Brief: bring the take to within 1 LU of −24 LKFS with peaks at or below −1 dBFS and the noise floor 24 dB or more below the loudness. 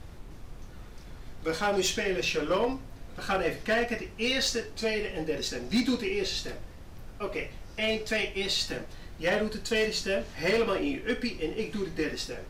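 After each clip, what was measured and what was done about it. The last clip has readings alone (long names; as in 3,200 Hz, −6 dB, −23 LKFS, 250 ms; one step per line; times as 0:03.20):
share of clipped samples 0.7%; peaks flattened at −20.0 dBFS; background noise floor −46 dBFS; target noise floor −54 dBFS; integrated loudness −29.5 LKFS; sample peak −20.0 dBFS; target loudness −24.0 LKFS
→ clipped peaks rebuilt −20 dBFS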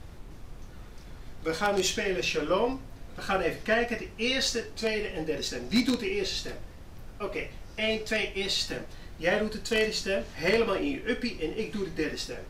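share of clipped samples 0.0%; background noise floor −46 dBFS; target noise floor −53 dBFS
→ noise reduction from a noise print 7 dB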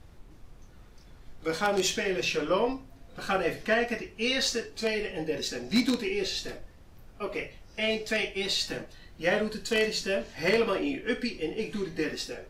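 background noise floor −52 dBFS; target noise floor −54 dBFS
→ noise reduction from a noise print 6 dB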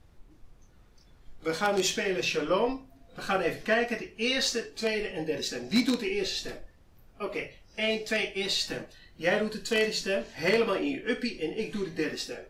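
background noise floor −57 dBFS; integrated loudness −29.5 LKFS; sample peak −11.0 dBFS; target loudness −24.0 LKFS
→ level +5.5 dB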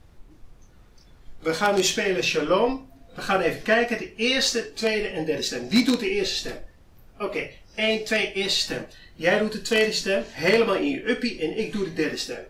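integrated loudness −24.0 LKFS; sample peak −5.5 dBFS; background noise floor −52 dBFS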